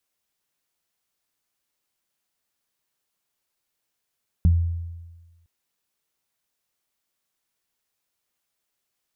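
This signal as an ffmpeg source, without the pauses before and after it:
ffmpeg -f lavfi -i "aevalsrc='0.251*pow(10,-3*t/1.3)*sin(2*PI*84.6*t)+0.133*pow(10,-3*t/0.21)*sin(2*PI*169.2*t)':duration=1.01:sample_rate=44100" out.wav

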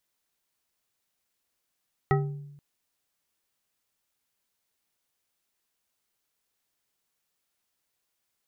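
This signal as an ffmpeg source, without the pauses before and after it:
ffmpeg -f lavfi -i "aevalsrc='0.1*pow(10,-3*t/0.98)*sin(2*PI*144*t)+0.0794*pow(10,-3*t/0.482)*sin(2*PI*397*t)+0.0631*pow(10,-3*t/0.301)*sin(2*PI*778.2*t)+0.0501*pow(10,-3*t/0.212)*sin(2*PI*1286.4*t)+0.0398*pow(10,-3*t/0.16)*sin(2*PI*1921*t)':duration=0.48:sample_rate=44100" out.wav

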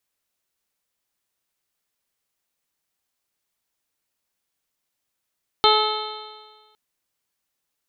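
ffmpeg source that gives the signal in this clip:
ffmpeg -f lavfi -i "aevalsrc='0.126*pow(10,-3*t/1.44)*sin(2*PI*427.38*t)+0.15*pow(10,-3*t/1.44)*sin(2*PI*857.07*t)+0.141*pow(10,-3*t/1.44)*sin(2*PI*1291.33*t)+0.0158*pow(10,-3*t/1.44)*sin(2*PI*1732.42*t)+0.0398*pow(10,-3*t/1.44)*sin(2*PI*2182.51*t)+0.0158*pow(10,-3*t/1.44)*sin(2*PI*2643.71*t)+0.0944*pow(10,-3*t/1.44)*sin(2*PI*3118.03*t)+0.1*pow(10,-3*t/1.44)*sin(2*PI*3607.4*t)+0.1*pow(10,-3*t/1.44)*sin(2*PI*4113.63*t)':duration=1.11:sample_rate=44100" out.wav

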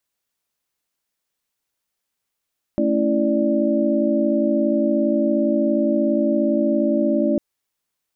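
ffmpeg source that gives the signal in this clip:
ffmpeg -f lavfi -i "aevalsrc='0.0841*(sin(2*PI*220*t)+sin(2*PI*277.18*t)+sin(2*PI*329.63*t)+sin(2*PI*587.33*t))':duration=4.6:sample_rate=44100" out.wav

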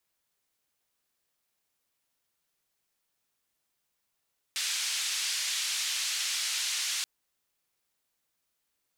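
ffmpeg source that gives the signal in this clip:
ffmpeg -f lavfi -i "anoisesrc=color=white:duration=2.48:sample_rate=44100:seed=1,highpass=frequency=2400,lowpass=frequency=6400,volume=-19.5dB" out.wav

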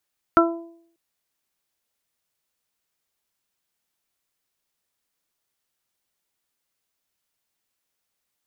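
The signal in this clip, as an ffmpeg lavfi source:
ffmpeg -f lavfi -i "aevalsrc='0.211*pow(10,-3*t/0.64)*sin(2*PI*335*t)+0.15*pow(10,-3*t/0.53)*sin(2*PI*670*t)+0.0794*pow(10,-3*t/0.44)*sin(2*PI*1005*t)+0.335*pow(10,-3*t/0.21)*sin(2*PI*1340*t)':duration=0.59:sample_rate=44100" out.wav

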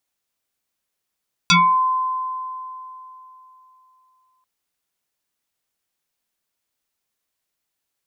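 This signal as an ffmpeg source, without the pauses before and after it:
ffmpeg -f lavfi -i "aevalsrc='0.335*pow(10,-3*t/3.29)*sin(2*PI*1030*t+4.6*pow(10,-3*t/0.31)*sin(2*PI*1.17*1030*t))':duration=2.94:sample_rate=44100" out.wav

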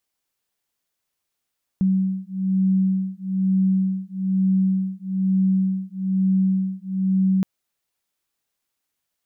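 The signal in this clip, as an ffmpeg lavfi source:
ffmpeg -f lavfi -i "aevalsrc='0.0891*(sin(2*PI*189*t)+sin(2*PI*190.1*t))':duration=5.62:sample_rate=44100" out.wav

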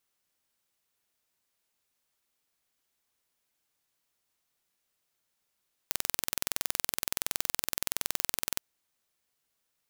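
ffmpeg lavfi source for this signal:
ffmpeg -f lavfi -i "aevalsrc='0.841*eq(mod(n,2061),0)':duration=2.69:sample_rate=44100" out.wav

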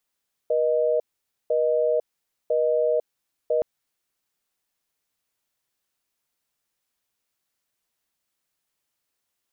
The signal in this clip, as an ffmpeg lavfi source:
ffmpeg -f lavfi -i "aevalsrc='0.0841*(sin(2*PI*480*t)+sin(2*PI*620*t))*clip(min(mod(t,1),0.5-mod(t,1))/0.005,0,1)':duration=3.12:sample_rate=44100" out.wav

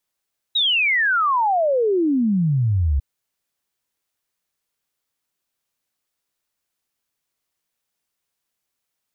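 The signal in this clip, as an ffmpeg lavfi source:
ffmpeg -f lavfi -i "aevalsrc='0.168*clip(min(t,2.45-t)/0.01,0,1)*sin(2*PI*3900*2.45/log(65/3900)*(exp(log(65/3900)*t/2.45)-1))':duration=2.45:sample_rate=44100" out.wav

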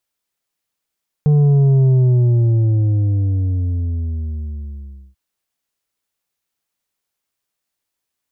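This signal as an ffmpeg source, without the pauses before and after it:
ffmpeg -f lavfi -i "aevalsrc='0.316*clip((3.89-t)/3.29,0,1)*tanh(2*sin(2*PI*150*3.89/log(65/150)*(exp(log(65/150)*t/3.89)-1)))/tanh(2)':duration=3.89:sample_rate=44100" out.wav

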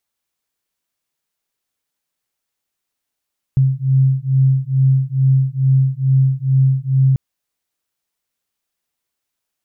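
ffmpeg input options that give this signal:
ffmpeg -f lavfi -i "aevalsrc='0.188*(sin(2*PI*132*t)+sin(2*PI*134.3*t))':duration=3.59:sample_rate=44100" out.wav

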